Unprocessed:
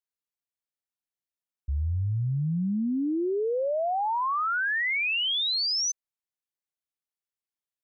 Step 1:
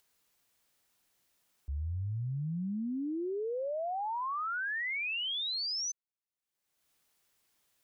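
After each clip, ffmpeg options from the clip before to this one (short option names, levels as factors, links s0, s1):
-af "acompressor=mode=upward:threshold=0.00562:ratio=2.5,volume=0.398"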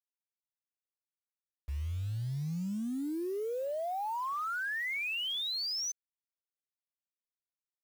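-af "acrusher=bits=8:mix=0:aa=0.000001"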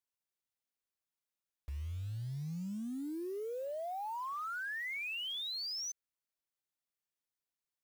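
-af "alimiter=level_in=4.47:limit=0.0631:level=0:latency=1,volume=0.224,volume=1.12"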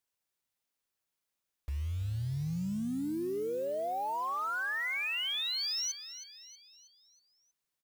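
-af "aecho=1:1:319|638|957|1276|1595:0.237|0.111|0.0524|0.0246|0.0116,volume=1.88"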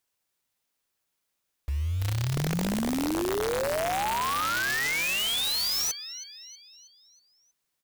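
-af "aeval=exprs='(mod(29.9*val(0)+1,2)-1)/29.9':c=same,volume=2.11"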